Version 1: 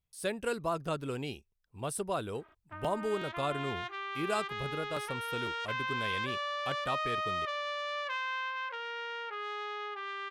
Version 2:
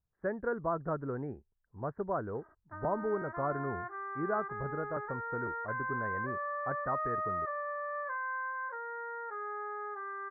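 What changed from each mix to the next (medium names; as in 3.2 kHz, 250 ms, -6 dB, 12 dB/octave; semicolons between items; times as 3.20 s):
master: add steep low-pass 1.8 kHz 72 dB/octave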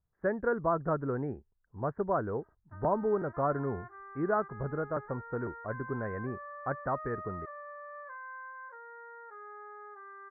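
speech +4.0 dB; background -8.0 dB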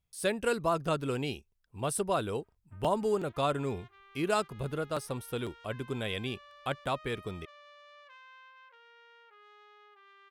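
background -11.0 dB; master: remove steep low-pass 1.8 kHz 72 dB/octave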